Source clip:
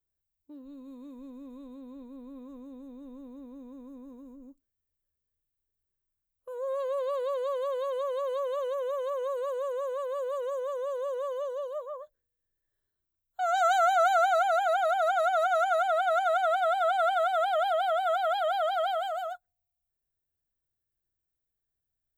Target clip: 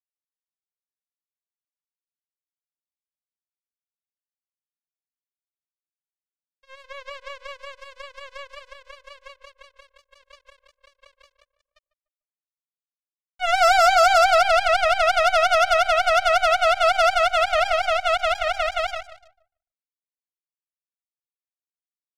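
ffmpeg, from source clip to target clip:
ffmpeg -i in.wav -filter_complex "[0:a]lowpass=3800,acrusher=bits=3:mix=0:aa=0.5,asplit=2[link_01][link_02];[link_02]adelay=148,lowpass=frequency=1400:poles=1,volume=-14dB,asplit=2[link_03][link_04];[link_04]adelay=148,lowpass=frequency=1400:poles=1,volume=0.33,asplit=2[link_05][link_06];[link_06]adelay=148,lowpass=frequency=1400:poles=1,volume=0.33[link_07];[link_01][link_03][link_05][link_07]amix=inputs=4:normalize=0,volume=7dB" out.wav

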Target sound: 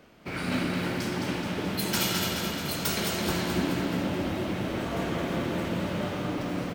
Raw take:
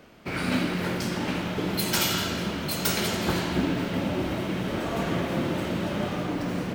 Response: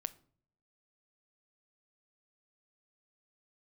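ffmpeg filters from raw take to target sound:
-af "aecho=1:1:214|428|642|856|1070|1284|1498|1712:0.562|0.332|0.196|0.115|0.0681|0.0402|0.0237|0.014,volume=-3.5dB"

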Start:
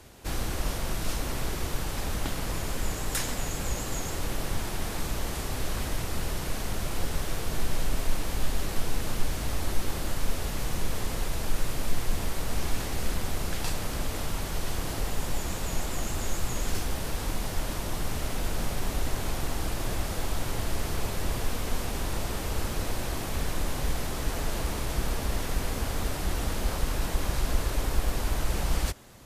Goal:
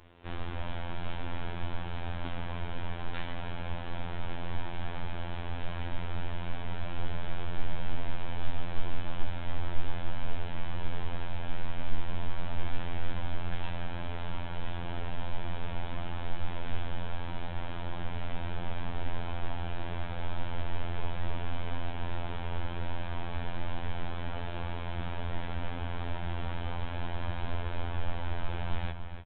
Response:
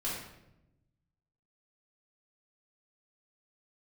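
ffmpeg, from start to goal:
-filter_complex "[0:a]equalizer=frequency=950:width=4.6:gain=3,asplit=2[link_01][link_02];[1:a]atrim=start_sample=2205[link_03];[link_02][link_03]afir=irnorm=-1:irlink=0,volume=-18.5dB[link_04];[link_01][link_04]amix=inputs=2:normalize=0,aresample=8000,aresample=44100,afftfilt=real='hypot(re,im)*cos(PI*b)':imag='0':win_size=2048:overlap=0.75,asplit=2[link_05][link_06];[link_06]adelay=291.5,volume=-8dB,highshelf=frequency=4000:gain=-6.56[link_07];[link_05][link_07]amix=inputs=2:normalize=0,volume=-3dB"

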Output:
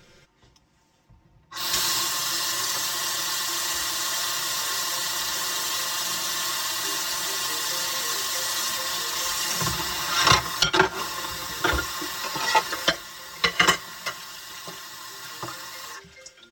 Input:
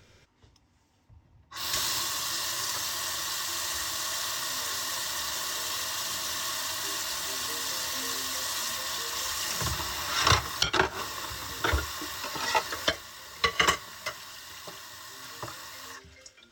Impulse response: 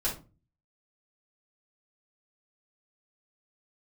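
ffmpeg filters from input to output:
-af "aecho=1:1:5.7:0.77,volume=3dB"

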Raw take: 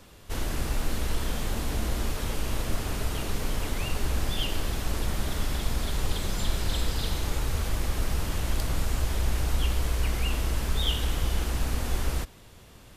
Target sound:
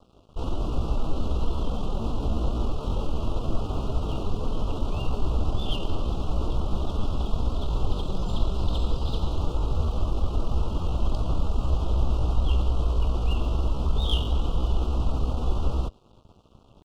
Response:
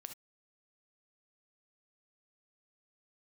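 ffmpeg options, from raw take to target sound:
-af "atempo=0.77,adynamicsmooth=sensitivity=1:basefreq=2500,aeval=exprs='sgn(val(0))*max(abs(val(0))-0.00224,0)':channel_layout=same,asuperstop=centerf=1900:order=8:qfactor=1.3,volume=4dB"

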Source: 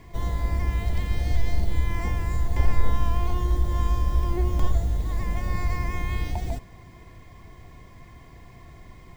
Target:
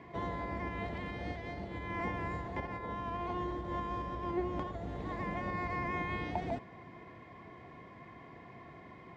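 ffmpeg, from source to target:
ffmpeg -i in.wav -af "alimiter=limit=-17.5dB:level=0:latency=1:release=190,highpass=190,lowpass=2300,volume=1dB" out.wav

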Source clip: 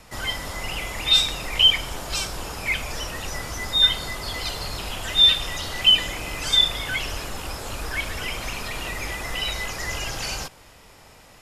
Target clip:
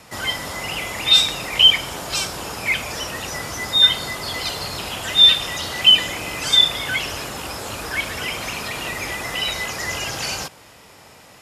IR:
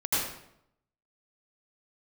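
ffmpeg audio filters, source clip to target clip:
-af "highpass=100,volume=4dB"

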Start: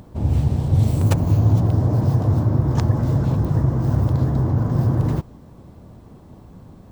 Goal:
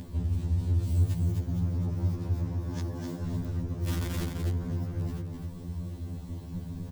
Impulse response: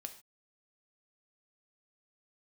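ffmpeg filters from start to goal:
-filter_complex "[0:a]alimiter=limit=-12dB:level=0:latency=1:release=467,asettb=1/sr,asplit=3[link_01][link_02][link_03];[link_01]atrim=end=2.514[link_04];[link_02]atrim=start=2.51:end=3.23,asetpts=PTS-STARTPTS,afade=type=in:duration=0.004:curve=qsin,afade=type=out:start_time=0.716:duration=0.004:curve=qsin,highpass=frequency=310:poles=1[link_05];[link_03]atrim=start=3.226[link_06];[link_04][link_05]acrossfade=duration=0.004:curve1=hsin:curve2=qsin[link_07];[link_07][link_06]acrossfade=duration=0.004:curve1=qsin:curve2=hsin,asettb=1/sr,asplit=3[link_08][link_09][link_10];[link_08]atrim=end=3.774[link_11];[link_09]atrim=start=3.77:end=4.27,asetpts=PTS-STARTPTS,afade=type=in:duration=0.004:curve=qsin,afade=type=out:start_time=0.496:duration=0.004:curve=qsin,aeval=exprs='(mod(5.31*val(0)+1,2)-1)/5.31':channel_layout=same[link_12];[link_10]atrim=start=4.266[link_13];[link_11][link_12]acrossfade=duration=0.004:curve1=hsin:curve2=qsin[link_14];[link_14][link_13]acrossfade=duration=0.004:curve1=qsin:curve2=hsin,bandreject=frequency=1300:width=7.7,asoftclip=type=hard:threshold=-20.5dB,acompressor=threshold=-35dB:ratio=4,equalizer=frequency=730:width=0.51:gain=-11,asplit=2[link_15][link_16];[link_16]aecho=0:1:256|512|768:0.562|0.09|0.0144[link_17];[link_15][link_17]amix=inputs=2:normalize=0,afftfilt=real='re*2*eq(mod(b,4),0)':imag='im*2*eq(mod(b,4),0)':win_size=2048:overlap=0.75,volume=8dB"

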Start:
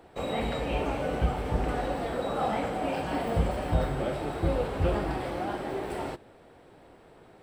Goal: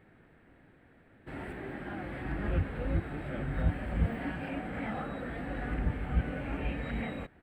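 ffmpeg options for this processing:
ffmpeg -i in.wav -af "areverse,firequalizer=gain_entry='entry(260,0);entry(400,-9);entry(1000,-10);entry(1700,3);entry(3100,-8);entry(5600,-21);entry(8600,-13)':delay=0.05:min_phase=1,volume=-2dB" out.wav

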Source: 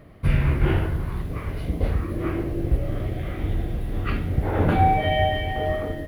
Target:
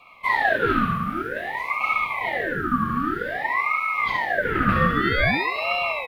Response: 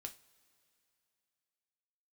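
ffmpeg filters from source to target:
-filter_complex "[0:a]asplit=2[link_01][link_02];[link_02]aecho=0:1:148:0.376[link_03];[link_01][link_03]amix=inputs=2:normalize=0,afreqshift=410,equalizer=frequency=3600:width_type=o:width=1.1:gain=-4.5,asplit=2[link_04][link_05];[1:a]atrim=start_sample=2205,adelay=66[link_06];[link_05][link_06]afir=irnorm=-1:irlink=0,volume=1.5dB[link_07];[link_04][link_07]amix=inputs=2:normalize=0,aeval=exprs='val(0)*sin(2*PI*1200*n/s+1200*0.45/0.52*sin(2*PI*0.52*n/s))':channel_layout=same"

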